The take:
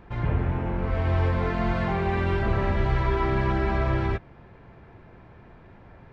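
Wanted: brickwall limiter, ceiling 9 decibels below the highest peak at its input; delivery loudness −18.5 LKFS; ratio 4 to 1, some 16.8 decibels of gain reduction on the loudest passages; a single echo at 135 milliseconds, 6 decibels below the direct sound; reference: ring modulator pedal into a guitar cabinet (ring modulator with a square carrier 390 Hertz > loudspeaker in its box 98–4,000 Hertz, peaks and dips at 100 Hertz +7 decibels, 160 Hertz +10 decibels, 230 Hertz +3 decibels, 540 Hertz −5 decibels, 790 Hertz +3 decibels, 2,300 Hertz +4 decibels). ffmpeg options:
ffmpeg -i in.wav -af "acompressor=threshold=-40dB:ratio=4,alimiter=level_in=13.5dB:limit=-24dB:level=0:latency=1,volume=-13.5dB,aecho=1:1:135:0.501,aeval=exprs='val(0)*sgn(sin(2*PI*390*n/s))':channel_layout=same,highpass=98,equalizer=frequency=100:width_type=q:width=4:gain=7,equalizer=frequency=160:width_type=q:width=4:gain=10,equalizer=frequency=230:width_type=q:width=4:gain=3,equalizer=frequency=540:width_type=q:width=4:gain=-5,equalizer=frequency=790:width_type=q:width=4:gain=3,equalizer=frequency=2300:width_type=q:width=4:gain=4,lowpass=frequency=4000:width=0.5412,lowpass=frequency=4000:width=1.3066,volume=25.5dB" out.wav

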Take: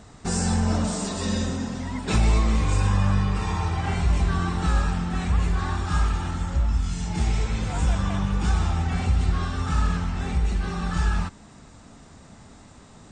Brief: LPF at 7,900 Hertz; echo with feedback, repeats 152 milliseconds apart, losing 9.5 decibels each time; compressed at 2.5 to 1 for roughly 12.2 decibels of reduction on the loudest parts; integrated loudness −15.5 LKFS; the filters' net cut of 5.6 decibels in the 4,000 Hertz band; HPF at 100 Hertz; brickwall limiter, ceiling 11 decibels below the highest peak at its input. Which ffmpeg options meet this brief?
ffmpeg -i in.wav -af "highpass=100,lowpass=7900,equalizer=frequency=4000:width_type=o:gain=-7,acompressor=threshold=-40dB:ratio=2.5,alimiter=level_in=12dB:limit=-24dB:level=0:latency=1,volume=-12dB,aecho=1:1:152|304|456|608:0.335|0.111|0.0365|0.012,volume=29dB" out.wav

